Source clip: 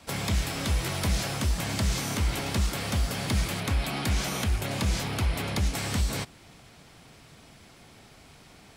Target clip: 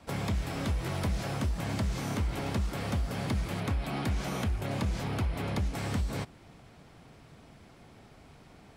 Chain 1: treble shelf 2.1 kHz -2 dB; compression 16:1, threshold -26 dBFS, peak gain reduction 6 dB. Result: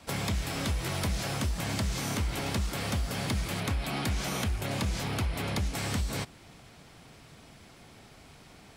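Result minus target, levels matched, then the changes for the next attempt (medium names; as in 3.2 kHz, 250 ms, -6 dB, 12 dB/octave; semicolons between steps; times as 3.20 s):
4 kHz band +5.5 dB
change: treble shelf 2.1 kHz -11 dB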